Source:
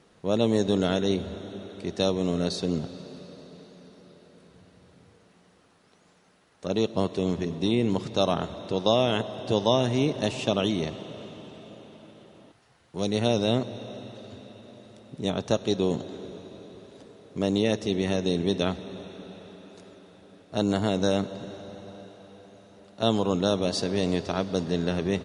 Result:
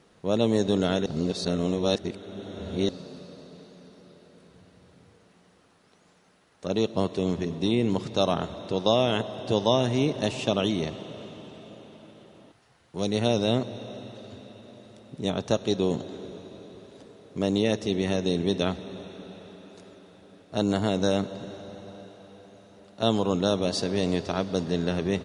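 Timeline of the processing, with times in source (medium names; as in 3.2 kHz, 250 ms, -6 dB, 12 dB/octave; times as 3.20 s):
1.06–2.89 s: reverse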